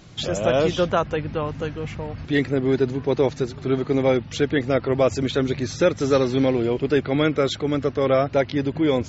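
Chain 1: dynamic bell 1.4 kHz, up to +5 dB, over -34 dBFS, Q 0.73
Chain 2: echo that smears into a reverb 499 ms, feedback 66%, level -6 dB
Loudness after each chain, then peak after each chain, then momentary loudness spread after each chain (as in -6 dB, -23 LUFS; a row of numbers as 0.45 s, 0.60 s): -21.0 LUFS, -21.0 LUFS; -5.0 dBFS, -5.0 dBFS; 8 LU, 5 LU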